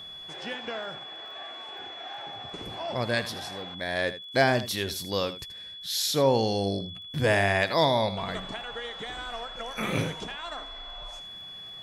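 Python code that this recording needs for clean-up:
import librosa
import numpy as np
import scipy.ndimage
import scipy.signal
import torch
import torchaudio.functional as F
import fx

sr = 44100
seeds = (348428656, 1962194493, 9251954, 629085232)

y = fx.fix_declip(x, sr, threshold_db=-12.5)
y = fx.fix_declick_ar(y, sr, threshold=6.5)
y = fx.notch(y, sr, hz=3400.0, q=30.0)
y = fx.fix_echo_inverse(y, sr, delay_ms=80, level_db=-13.5)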